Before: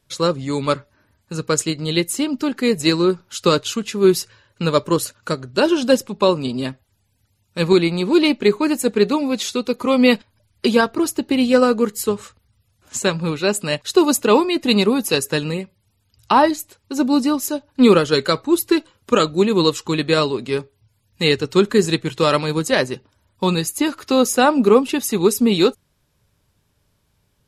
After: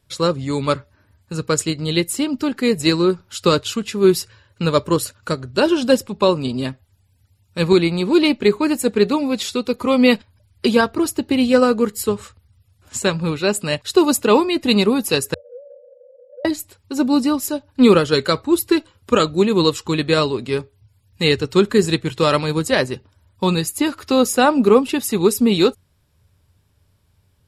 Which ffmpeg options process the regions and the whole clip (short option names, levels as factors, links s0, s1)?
-filter_complex "[0:a]asettb=1/sr,asplit=3[s0][s1][s2];[s0]atrim=end=15.344[s3];[s1]atrim=start=15.34:end=16.45,asetpts=PTS-STARTPTS,afade=t=in:d=0.004:c=qsin,afade=t=out:st=1.106:d=0.004:c=qsin,aeval=exprs='val(0)+0.5*0.112*sgn(val(0))':c=same,asuperpass=centerf=530:order=20:qfactor=4.9,acompressor=threshold=0.00794:ratio=2:attack=3.2:release=140:knee=1:detection=peak[s4];[s2]atrim=start=16.446[s5];[s3][s4]acrossfade=d=0.004:c1=hsin:c2=qsin[s6];[s6][s5]acrossfade=d=0.004:c1=qsin:c2=hsin,equalizer=f=84:w=2.2:g=11.5,bandreject=f=6300:w=12"